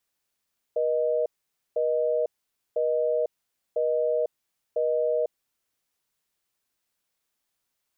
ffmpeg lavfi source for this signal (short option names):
-f lavfi -i "aevalsrc='0.0596*(sin(2*PI*480*t)+sin(2*PI*620*t))*clip(min(mod(t,1),0.5-mod(t,1))/0.005,0,1)':d=4.63:s=44100"